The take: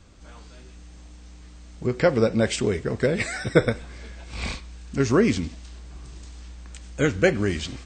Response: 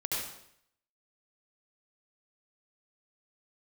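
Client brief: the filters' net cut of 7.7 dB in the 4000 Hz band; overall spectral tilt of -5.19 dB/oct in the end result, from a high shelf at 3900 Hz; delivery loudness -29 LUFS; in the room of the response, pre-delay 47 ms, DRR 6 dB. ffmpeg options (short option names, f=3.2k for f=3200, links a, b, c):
-filter_complex "[0:a]highshelf=f=3.9k:g=-7,equalizer=f=4k:t=o:g=-6,asplit=2[a][b];[1:a]atrim=start_sample=2205,adelay=47[c];[b][c]afir=irnorm=-1:irlink=0,volume=-11dB[d];[a][d]amix=inputs=2:normalize=0,volume=-5.5dB"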